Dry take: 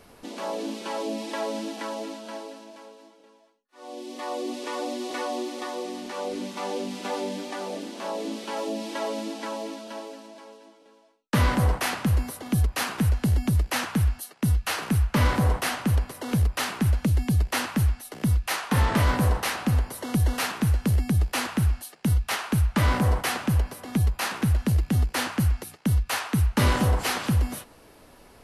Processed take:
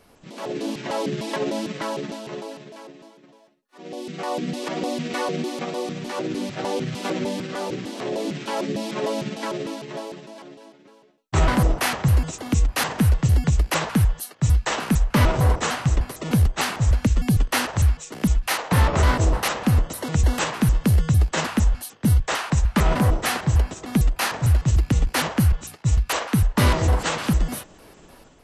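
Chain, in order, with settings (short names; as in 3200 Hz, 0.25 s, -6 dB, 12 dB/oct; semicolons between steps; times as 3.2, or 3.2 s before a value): trilling pitch shifter -7.5 st, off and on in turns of 0.151 s; AGC gain up to 8 dB; gain -3 dB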